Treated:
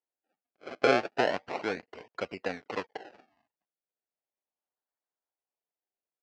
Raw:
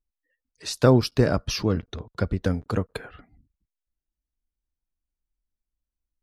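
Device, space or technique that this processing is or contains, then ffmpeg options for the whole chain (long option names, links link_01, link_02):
circuit-bent sampling toy: -af "acrusher=samples=32:mix=1:aa=0.000001:lfo=1:lforange=32:lforate=0.35,highpass=480,equalizer=frequency=740:width_type=q:width=4:gain=3,equalizer=frequency=1200:width_type=q:width=4:gain=-4,equalizer=frequency=3600:width_type=q:width=4:gain=-9,lowpass=frequency=4400:width=0.5412,lowpass=frequency=4400:width=1.3066,volume=-2dB"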